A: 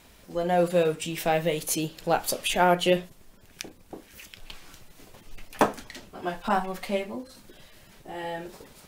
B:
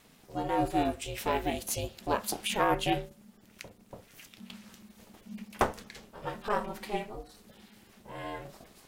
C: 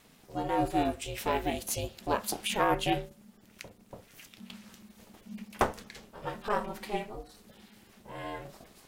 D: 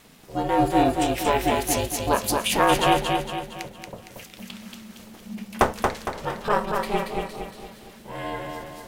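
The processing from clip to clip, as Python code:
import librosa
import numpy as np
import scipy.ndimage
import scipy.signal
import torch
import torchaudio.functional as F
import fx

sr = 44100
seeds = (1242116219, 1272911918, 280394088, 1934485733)

y1 = fx.hum_notches(x, sr, base_hz=60, count=6)
y1 = y1 * np.sin(2.0 * np.pi * 210.0 * np.arange(len(y1)) / sr)
y1 = F.gain(torch.from_numpy(y1), -2.5).numpy()
y2 = y1
y3 = fx.echo_feedback(y2, sr, ms=230, feedback_pct=46, wet_db=-4)
y3 = F.gain(torch.from_numpy(y3), 7.5).numpy()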